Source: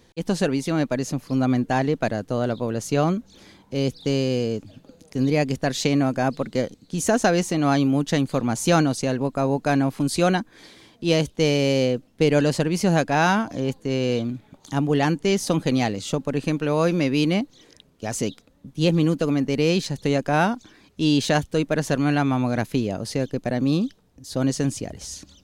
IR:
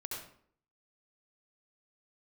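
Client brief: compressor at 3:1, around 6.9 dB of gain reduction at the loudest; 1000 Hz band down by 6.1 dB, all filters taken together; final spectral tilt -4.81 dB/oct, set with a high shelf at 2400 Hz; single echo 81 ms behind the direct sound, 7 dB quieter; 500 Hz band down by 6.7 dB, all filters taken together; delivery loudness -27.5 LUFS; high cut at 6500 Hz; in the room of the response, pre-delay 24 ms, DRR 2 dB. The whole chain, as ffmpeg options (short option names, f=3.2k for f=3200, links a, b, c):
-filter_complex "[0:a]lowpass=6.5k,equalizer=f=500:t=o:g=-7,equalizer=f=1k:t=o:g=-6.5,highshelf=f=2.4k:g=5.5,acompressor=threshold=-27dB:ratio=3,aecho=1:1:81:0.447,asplit=2[a][b];[1:a]atrim=start_sample=2205,adelay=24[c];[b][c]afir=irnorm=-1:irlink=0,volume=-2dB[d];[a][d]amix=inputs=2:normalize=0"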